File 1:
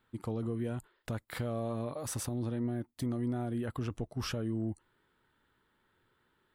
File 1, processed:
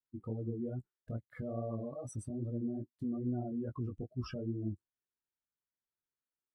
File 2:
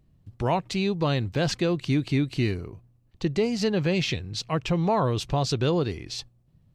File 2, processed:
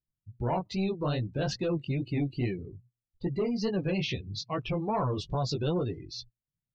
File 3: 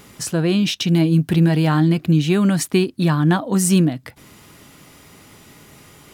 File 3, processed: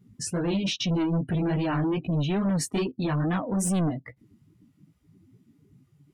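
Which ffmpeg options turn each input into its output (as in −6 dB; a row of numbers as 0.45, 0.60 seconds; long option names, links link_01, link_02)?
-af "flanger=delay=15.5:depth=6.1:speed=2.4,asoftclip=type=tanh:threshold=-22.5dB,afftdn=noise_reduction=29:noise_floor=-38"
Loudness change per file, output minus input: −3.5, −5.5, −9.5 LU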